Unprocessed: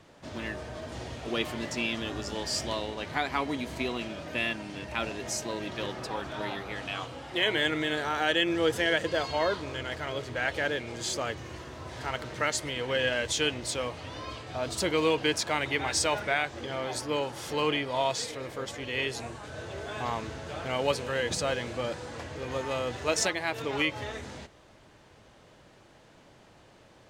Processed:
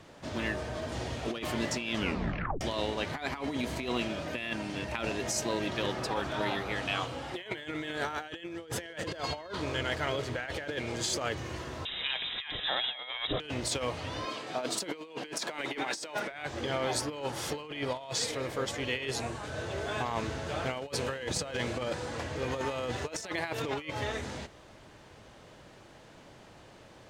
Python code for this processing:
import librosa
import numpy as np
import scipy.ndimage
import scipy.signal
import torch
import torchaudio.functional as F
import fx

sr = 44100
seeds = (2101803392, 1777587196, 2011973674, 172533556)

y = fx.freq_invert(x, sr, carrier_hz=3800, at=(11.85, 13.4))
y = fx.highpass(y, sr, hz=180.0, slope=24, at=(14.25, 16.31))
y = fx.edit(y, sr, fx.tape_stop(start_s=1.95, length_s=0.66), tone=tone)
y = fx.over_compress(y, sr, threshold_db=-33.0, ratio=-0.5)